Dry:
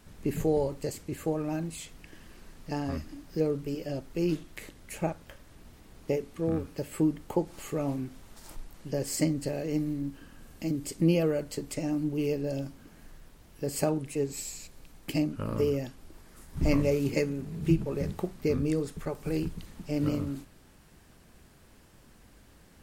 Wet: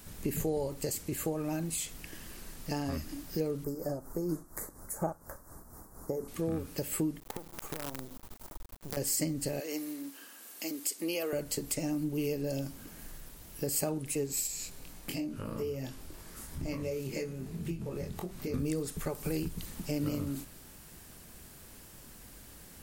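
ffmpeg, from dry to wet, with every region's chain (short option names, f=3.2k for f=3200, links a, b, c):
-filter_complex "[0:a]asettb=1/sr,asplit=3[a][b][c];[a]atrim=end=3.644[d];[b]atrim=start=3.64:end=6.28,asetpts=PTS-STARTPTS,afade=t=in:d=0.004:c=qsin,afade=t=out:st=2.636:d=0.004:c=qsin,equalizer=f=1.2k:w=0.85:g=9,tremolo=f=4.2:d=0.62,asuperstop=centerf=2900:order=4:qfactor=0.53[e];[c]atrim=start=6.276[f];[d][e]acrossfade=d=0.004:c1=hsin:c2=qsin[g];[g][f]acrossfade=d=0.004:c1=qsin:c2=hsin,asettb=1/sr,asplit=3[h][i][j];[h]atrim=end=7.204[k];[i]atrim=start=7.2:end=8.97,asetpts=PTS-STARTPTS,afade=t=in:d=0.004:c=qsin,afade=t=out:st=1.766:d=0.004:c=qsin,highshelf=f=1.6k:t=q:w=1.5:g=-13.5,acompressor=threshold=-38dB:ratio=12:attack=3.2:release=140:knee=1:detection=peak,acrusher=bits=7:dc=4:mix=0:aa=0.000001[l];[j]atrim=start=8.966[m];[k][l]acrossfade=d=0.004:c1=hsin:c2=qsin[n];[n][m]acrossfade=d=0.004:c1=qsin:c2=hsin,asettb=1/sr,asplit=3[o][p][q];[o]atrim=end=9.604[r];[p]atrim=start=9.6:end=11.33,asetpts=PTS-STARTPTS,afade=t=in:d=0.004:c=qsin,afade=t=out:st=1.726:d=0.004:c=qsin,highpass=f=250:w=0.5412,highpass=f=250:w=1.3066,lowshelf=f=480:g=-11.5[s];[q]atrim=start=11.326[t];[r][s]acrossfade=d=0.004:c1=hsin:c2=qsin[u];[u][t]acrossfade=d=0.004:c1=qsin:c2=hsin,asettb=1/sr,asplit=3[v][w][x];[v]atrim=end=14.474[y];[w]atrim=start=14.47:end=18.54,asetpts=PTS-STARTPTS,afade=t=in:d=0.004:c=qsin,afade=t=out:st=4.066:d=0.004:c=qsin,highshelf=f=8.2k:g=-6.5,acompressor=threshold=-44dB:ratio=2:attack=3.2:release=140:knee=1:detection=peak,asplit=2[z][aa];[aa]adelay=23,volume=-4.5dB[ab];[z][ab]amix=inputs=2:normalize=0,atrim=end_sample=179487[ac];[x]atrim=start=18.536[ad];[y][ac]acrossfade=d=0.004:c1=hsin:c2=qsin[ae];[ae][ad]acrossfade=d=0.004:c1=qsin:c2=hsin,aemphasis=mode=production:type=50kf,acompressor=threshold=-35dB:ratio=2.5,volume=2.5dB"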